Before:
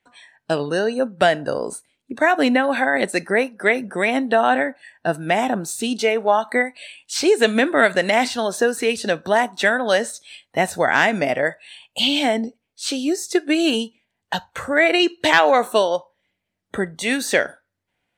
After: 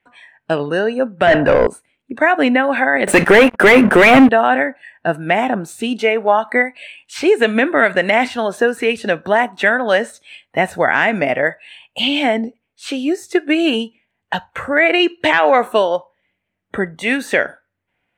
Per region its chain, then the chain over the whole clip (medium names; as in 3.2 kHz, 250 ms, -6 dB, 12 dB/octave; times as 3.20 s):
1.27–1.67 s: overdrive pedal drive 26 dB, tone 1.9 kHz, clips at -4.5 dBFS + elliptic low-pass 10 kHz + bass shelf 140 Hz +10 dB
3.07–4.29 s: peaking EQ 73 Hz -5.5 dB 1.6 oct + hum notches 60/120/180/240 Hz + waveshaping leveller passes 5
whole clip: resonant high shelf 3.4 kHz -9 dB, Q 1.5; loudness maximiser +4 dB; trim -1 dB